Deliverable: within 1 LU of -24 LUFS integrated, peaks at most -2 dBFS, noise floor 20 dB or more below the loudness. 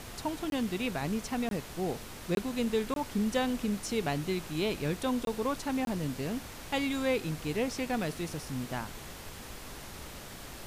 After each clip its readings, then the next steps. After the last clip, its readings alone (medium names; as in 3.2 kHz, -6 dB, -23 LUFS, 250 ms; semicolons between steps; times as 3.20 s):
dropouts 6; longest dropout 22 ms; noise floor -45 dBFS; noise floor target -53 dBFS; loudness -33.0 LUFS; peak level -17.5 dBFS; loudness target -24.0 LUFS
-> interpolate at 0.50/1.49/2.35/2.94/5.25/5.85 s, 22 ms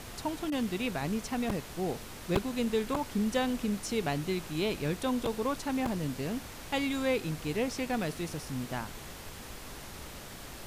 dropouts 0; noise floor -45 dBFS; noise floor target -53 dBFS
-> noise print and reduce 8 dB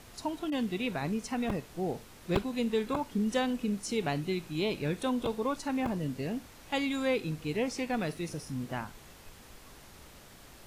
noise floor -53 dBFS; loudness -33.0 LUFS; peak level -13.5 dBFS; loudness target -24.0 LUFS
-> trim +9 dB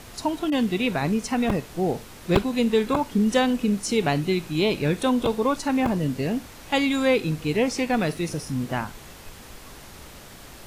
loudness -24.0 LUFS; peak level -4.5 dBFS; noise floor -44 dBFS